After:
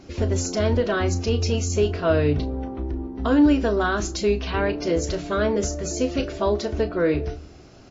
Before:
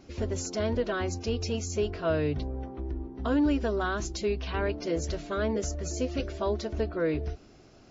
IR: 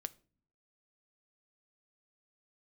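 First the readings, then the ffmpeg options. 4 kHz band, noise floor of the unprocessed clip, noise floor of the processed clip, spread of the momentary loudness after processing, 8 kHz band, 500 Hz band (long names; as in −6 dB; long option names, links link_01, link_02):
+7.0 dB, −54 dBFS, −46 dBFS, 8 LU, can't be measured, +7.5 dB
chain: -filter_complex "[0:a]asplit=2[link_01][link_02];[link_02]adelay=34,volume=-11dB[link_03];[link_01][link_03]amix=inputs=2:normalize=0,asplit=2[link_04][link_05];[1:a]atrim=start_sample=2205,asetrate=24696,aresample=44100[link_06];[link_05][link_06]afir=irnorm=-1:irlink=0,volume=1.5dB[link_07];[link_04][link_07]amix=inputs=2:normalize=0"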